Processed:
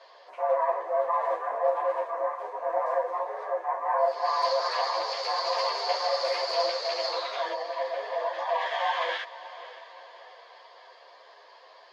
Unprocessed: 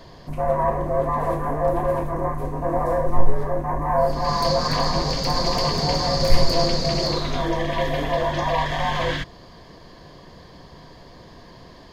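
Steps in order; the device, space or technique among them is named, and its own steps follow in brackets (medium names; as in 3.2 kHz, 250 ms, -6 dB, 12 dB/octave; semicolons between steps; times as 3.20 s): steep high-pass 520 Hz 36 dB/octave; 7.52–8.59 s: peaking EQ 3.8 kHz -14 dB -> -6 dB 2.8 oct; echo that smears into a reverb 575 ms, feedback 47%, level -15.5 dB; string-machine ensemble chorus (three-phase chorus; low-pass 4.1 kHz 12 dB/octave)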